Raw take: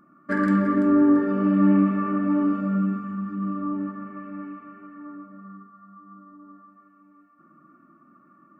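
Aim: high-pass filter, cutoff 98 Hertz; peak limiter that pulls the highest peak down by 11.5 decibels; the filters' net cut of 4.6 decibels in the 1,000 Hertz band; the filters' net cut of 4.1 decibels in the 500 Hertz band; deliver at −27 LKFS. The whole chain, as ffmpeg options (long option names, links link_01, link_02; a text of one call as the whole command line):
ffmpeg -i in.wav -af "highpass=98,equalizer=frequency=500:width_type=o:gain=-4.5,equalizer=frequency=1000:width_type=o:gain=-5,volume=4dB,alimiter=limit=-19dB:level=0:latency=1" out.wav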